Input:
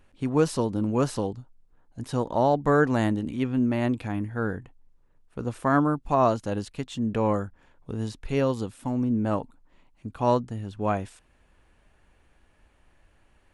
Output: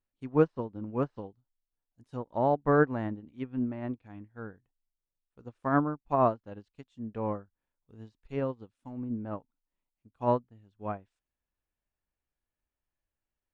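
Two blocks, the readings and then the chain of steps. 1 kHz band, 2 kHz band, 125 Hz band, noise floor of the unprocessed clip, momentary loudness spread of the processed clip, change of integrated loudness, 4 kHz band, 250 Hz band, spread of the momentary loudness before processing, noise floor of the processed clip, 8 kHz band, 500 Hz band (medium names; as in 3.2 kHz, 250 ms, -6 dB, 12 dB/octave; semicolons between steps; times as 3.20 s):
-5.0 dB, -6.0 dB, -7.5 dB, -63 dBFS, 18 LU, -5.0 dB, under -15 dB, -7.5 dB, 13 LU, under -85 dBFS, under -30 dB, -5.0 dB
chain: low-pass that closes with the level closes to 1.9 kHz, closed at -21.5 dBFS; upward expansion 2.5:1, over -37 dBFS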